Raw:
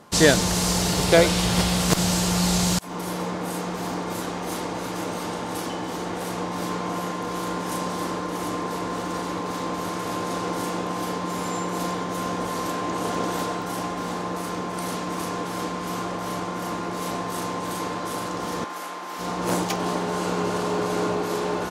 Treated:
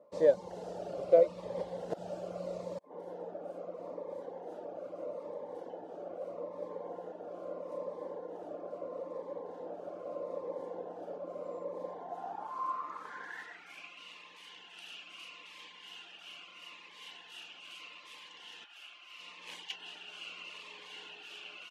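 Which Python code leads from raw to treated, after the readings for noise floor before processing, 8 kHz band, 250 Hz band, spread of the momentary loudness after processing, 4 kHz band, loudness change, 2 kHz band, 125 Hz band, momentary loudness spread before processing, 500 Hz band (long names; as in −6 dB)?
−31 dBFS, below −30 dB, −23.5 dB, 12 LU, −18.0 dB, −13.5 dB, −18.5 dB, below −25 dB, 9 LU, −8.0 dB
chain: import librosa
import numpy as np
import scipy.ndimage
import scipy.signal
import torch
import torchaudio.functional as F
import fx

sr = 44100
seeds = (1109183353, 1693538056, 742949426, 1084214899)

y = fx.filter_sweep_bandpass(x, sr, from_hz=560.0, to_hz=2800.0, start_s=11.83, end_s=14.02, q=7.9)
y = fx.dereverb_blind(y, sr, rt60_s=0.55)
y = fx.notch_cascade(y, sr, direction='falling', hz=0.78)
y = y * librosa.db_to_amplitude(2.5)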